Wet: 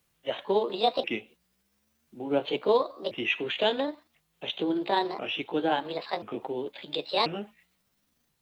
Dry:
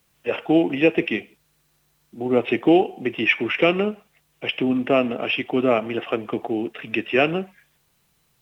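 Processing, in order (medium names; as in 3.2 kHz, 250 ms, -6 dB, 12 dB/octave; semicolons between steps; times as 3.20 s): sawtooth pitch modulation +8 st, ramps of 1037 ms; trim -6.5 dB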